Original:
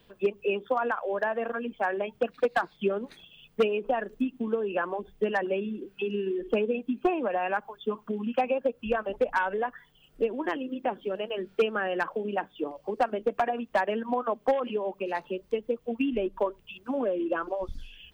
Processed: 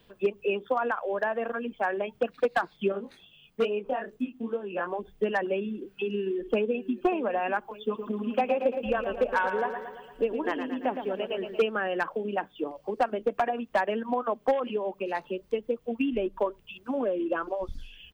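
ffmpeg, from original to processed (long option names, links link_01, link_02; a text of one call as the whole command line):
ffmpeg -i in.wav -filter_complex "[0:a]asettb=1/sr,asplit=3[link_01][link_02][link_03];[link_01]atrim=end=2.924[link_04];[link_02]atrim=start=2.92:end=4.87,asetpts=PTS-STARTPTS,afade=type=in:duration=0.004:curve=qsin,afade=type=out:start_time=1.946:duration=0.004:curve=qsin,flanger=delay=19:depth=4.6:speed=2.4[link_05];[link_03]atrim=start=4.866[link_06];[link_04][link_05]acrossfade=duration=0.004:curve1=hsin:curve2=qsin[link_07];[link_07][link_06]acrossfade=duration=0.004:curve1=qsin:curve2=hsin,asplit=2[link_08][link_09];[link_09]afade=type=in:start_time=6.16:duration=0.01,afade=type=out:start_time=7.03:duration=0.01,aecho=0:1:590|1180|1770|2360|2950|3540:0.158489|0.0950936|0.0570562|0.0342337|0.0205402|0.0123241[link_10];[link_08][link_10]amix=inputs=2:normalize=0,asettb=1/sr,asplit=3[link_11][link_12][link_13];[link_11]atrim=end=7.834[link_14];[link_12]atrim=start=7.83:end=11.6,asetpts=PTS-STARTPTS,afade=type=in:duration=0.004:curve=qsin,afade=type=out:start_time=3.766:duration=0.004:curve=qsin,aecho=1:1:114|228|342|456|570|684|798:0.398|0.227|0.129|0.0737|0.042|0.024|0.0137,atrim=end_sample=166257[link_15];[link_13]atrim=start=11.596[link_16];[link_14][link_15]acrossfade=duration=0.004:curve1=hsin:curve2=qsin[link_17];[link_17][link_16]acrossfade=duration=0.004:curve1=qsin:curve2=hsin" out.wav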